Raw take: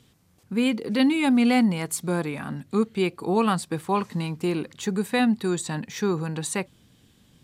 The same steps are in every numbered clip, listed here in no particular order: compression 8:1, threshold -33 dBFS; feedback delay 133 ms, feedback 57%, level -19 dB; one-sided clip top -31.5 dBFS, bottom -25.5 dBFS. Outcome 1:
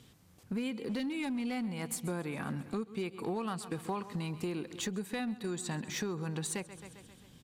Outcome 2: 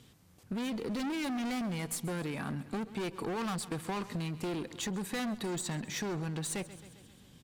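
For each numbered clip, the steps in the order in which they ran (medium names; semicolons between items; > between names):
feedback delay > compression > one-sided clip; one-sided clip > feedback delay > compression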